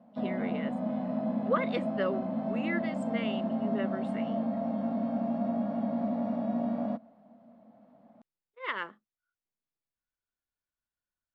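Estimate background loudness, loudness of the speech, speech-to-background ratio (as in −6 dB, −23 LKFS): −32.5 LKFS, −37.0 LKFS, −4.5 dB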